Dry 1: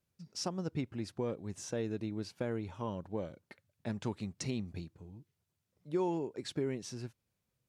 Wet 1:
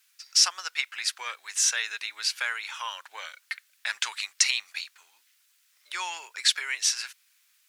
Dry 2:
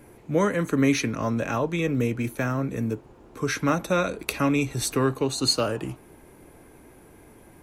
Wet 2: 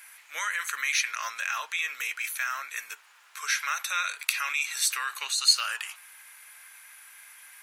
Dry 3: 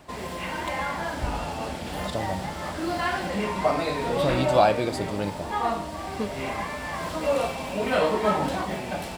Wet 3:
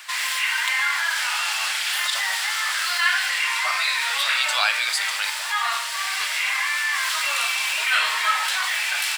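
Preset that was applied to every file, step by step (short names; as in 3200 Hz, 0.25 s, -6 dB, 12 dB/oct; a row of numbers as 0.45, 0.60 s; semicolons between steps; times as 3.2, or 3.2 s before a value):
HPF 1500 Hz 24 dB/oct; in parallel at -3 dB: negative-ratio compressor -42 dBFS, ratio -1; on the sum: normalise peaks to -6 dBFS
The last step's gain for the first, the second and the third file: +18.0, +2.5, +11.5 dB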